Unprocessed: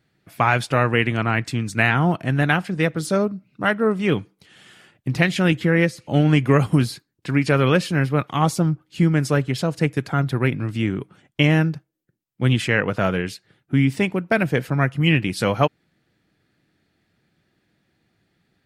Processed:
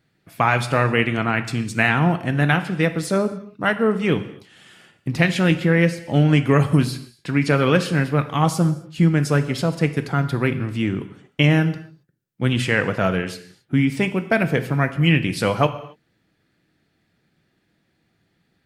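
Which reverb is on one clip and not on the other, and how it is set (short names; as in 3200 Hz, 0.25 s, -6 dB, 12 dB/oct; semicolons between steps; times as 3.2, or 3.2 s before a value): non-linear reverb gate 0.3 s falling, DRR 9.5 dB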